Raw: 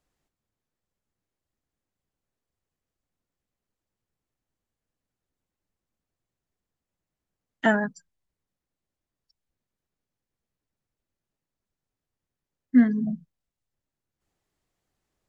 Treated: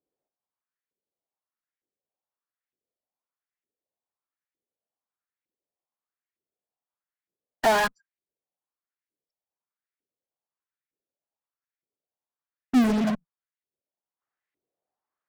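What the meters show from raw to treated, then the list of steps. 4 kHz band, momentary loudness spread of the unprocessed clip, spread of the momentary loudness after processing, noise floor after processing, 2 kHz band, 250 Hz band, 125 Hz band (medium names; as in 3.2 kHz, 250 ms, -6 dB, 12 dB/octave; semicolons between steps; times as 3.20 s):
+10.0 dB, 13 LU, 7 LU, under -85 dBFS, 0.0 dB, -2.0 dB, -0.5 dB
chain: LFO band-pass saw up 1.1 Hz 350–2200 Hz; in parallel at -9.5 dB: fuzz box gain 54 dB, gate -53 dBFS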